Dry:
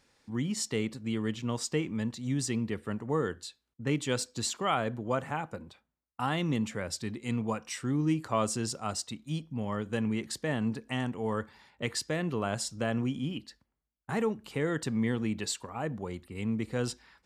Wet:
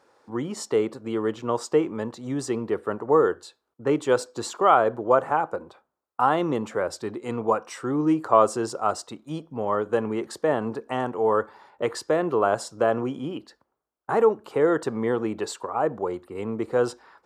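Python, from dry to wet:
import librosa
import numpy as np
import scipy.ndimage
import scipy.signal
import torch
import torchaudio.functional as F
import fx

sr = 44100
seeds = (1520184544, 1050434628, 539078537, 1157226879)

y = scipy.signal.sosfilt(scipy.signal.butter(2, 87.0, 'highpass', fs=sr, output='sos'), x)
y = fx.band_shelf(y, sr, hz=690.0, db=14.5, octaves=2.5)
y = y * librosa.db_to_amplitude(-2.0)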